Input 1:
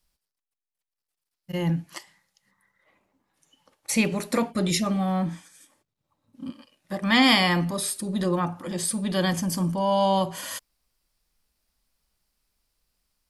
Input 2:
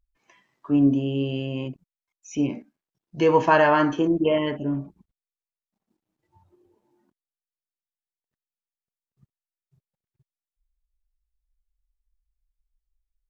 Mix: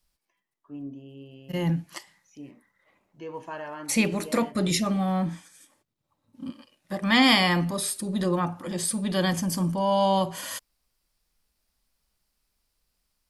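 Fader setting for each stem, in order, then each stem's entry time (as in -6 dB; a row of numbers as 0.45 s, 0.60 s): -0.5 dB, -19.5 dB; 0.00 s, 0.00 s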